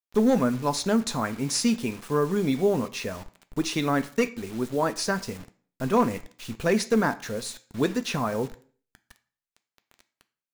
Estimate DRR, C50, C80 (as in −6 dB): 10.5 dB, 17.5 dB, 21.5 dB